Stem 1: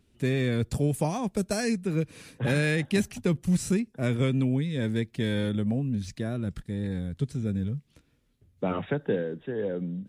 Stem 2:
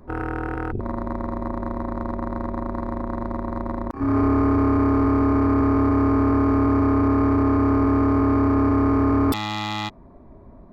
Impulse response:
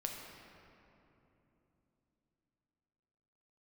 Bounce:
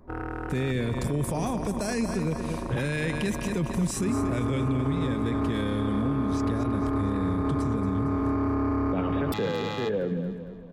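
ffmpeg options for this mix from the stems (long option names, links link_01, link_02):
-filter_complex "[0:a]bandreject=frequency=4300:width=19,adelay=300,volume=3dB,asplit=2[link_01][link_02];[link_02]volume=-10dB[link_03];[1:a]volume=-6dB,asplit=2[link_04][link_05];[link_05]volume=-20.5dB[link_06];[link_03][link_06]amix=inputs=2:normalize=0,aecho=0:1:229|458|687|916|1145|1374|1603:1|0.47|0.221|0.104|0.0488|0.0229|0.0108[link_07];[link_01][link_04][link_07]amix=inputs=3:normalize=0,alimiter=limit=-19dB:level=0:latency=1:release=49"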